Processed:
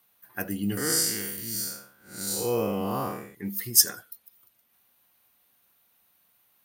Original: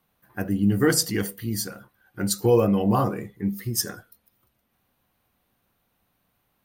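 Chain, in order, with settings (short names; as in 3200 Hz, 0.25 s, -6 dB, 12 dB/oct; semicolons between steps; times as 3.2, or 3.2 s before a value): 0.77–3.35 time blur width 0.208 s; tilt +3 dB/oct; gain -1 dB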